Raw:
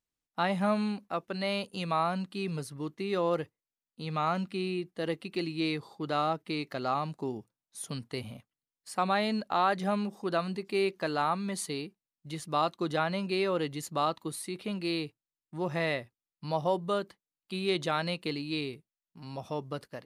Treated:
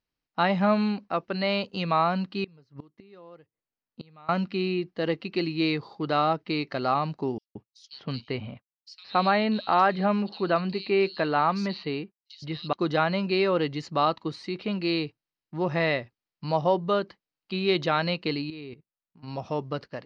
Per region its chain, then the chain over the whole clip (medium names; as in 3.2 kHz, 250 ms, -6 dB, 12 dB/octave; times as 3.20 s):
2.44–4.29 s: inverted gate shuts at -32 dBFS, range -25 dB + tape noise reduction on one side only decoder only
7.38–12.73 s: resonant high shelf 6.3 kHz -7 dB, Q 1.5 + expander -53 dBFS + bands offset in time highs, lows 170 ms, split 3.8 kHz
18.50–19.28 s: low-pass 2.5 kHz 6 dB/octave + level held to a coarse grid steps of 15 dB
whole clip: steep low-pass 5.3 kHz 36 dB/octave; band-stop 3.5 kHz, Q 12; trim +5.5 dB